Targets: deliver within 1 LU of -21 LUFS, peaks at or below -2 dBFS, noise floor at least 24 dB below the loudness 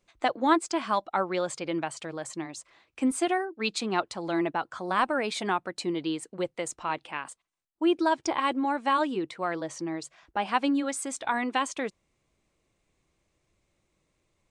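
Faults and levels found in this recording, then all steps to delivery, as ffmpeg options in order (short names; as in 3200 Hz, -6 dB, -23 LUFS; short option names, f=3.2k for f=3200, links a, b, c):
loudness -29.5 LUFS; peak -9.5 dBFS; loudness target -21.0 LUFS
-> -af "volume=8.5dB,alimiter=limit=-2dB:level=0:latency=1"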